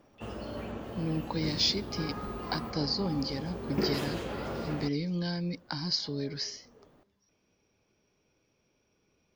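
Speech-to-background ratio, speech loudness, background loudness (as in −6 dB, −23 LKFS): 5.0 dB, −33.0 LKFS, −38.0 LKFS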